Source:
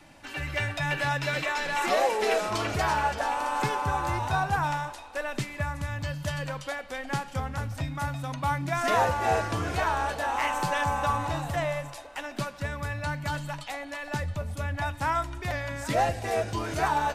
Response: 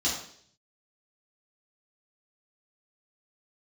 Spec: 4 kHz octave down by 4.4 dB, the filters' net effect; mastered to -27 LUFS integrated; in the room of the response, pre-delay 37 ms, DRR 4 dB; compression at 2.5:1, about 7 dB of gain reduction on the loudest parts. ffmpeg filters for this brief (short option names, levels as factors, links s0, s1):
-filter_complex "[0:a]equalizer=f=4000:t=o:g=-6,acompressor=threshold=0.0282:ratio=2.5,asplit=2[s0][s1];[1:a]atrim=start_sample=2205,adelay=37[s2];[s1][s2]afir=irnorm=-1:irlink=0,volume=0.224[s3];[s0][s3]amix=inputs=2:normalize=0,volume=1.78"